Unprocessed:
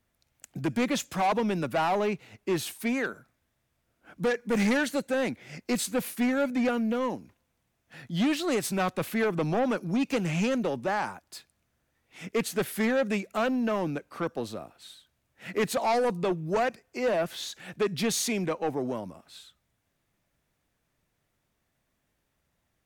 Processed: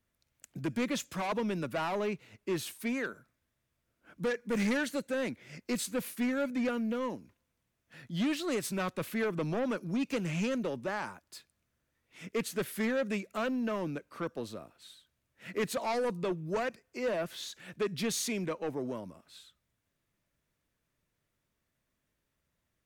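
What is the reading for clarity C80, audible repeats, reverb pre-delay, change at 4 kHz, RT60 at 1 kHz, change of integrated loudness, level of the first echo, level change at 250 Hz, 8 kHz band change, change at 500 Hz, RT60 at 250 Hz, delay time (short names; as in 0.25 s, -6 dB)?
none, none, none, -5.0 dB, none, -5.5 dB, none, -5.0 dB, -5.0 dB, -5.5 dB, none, none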